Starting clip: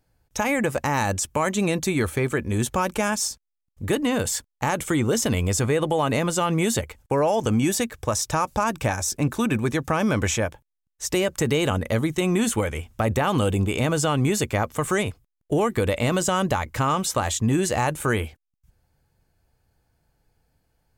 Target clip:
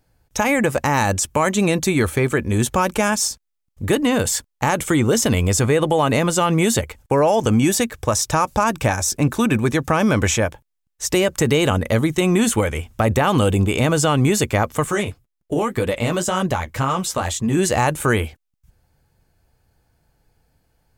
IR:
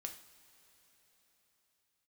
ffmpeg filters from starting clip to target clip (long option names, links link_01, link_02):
-filter_complex "[0:a]asettb=1/sr,asplit=3[link_01][link_02][link_03];[link_01]atrim=end=14.844[link_04];[link_02]atrim=start=14.84:end=17.57,asetpts=PTS-STARTPTS,afade=type=in:duration=0.004:curve=qsin,afade=type=out:start_time=2.726:duration=0.004:curve=qsin,flanger=delay=3.9:depth=9.5:regen=-29:speed=1.9:shape=triangular[link_05];[link_03]atrim=start=17.566[link_06];[link_04][link_05]acrossfade=duration=0.004:curve1=hsin:curve2=qsin[link_07];[link_07][link_06]acrossfade=duration=0.004:curve1=qsin:curve2=hsin,volume=5dB"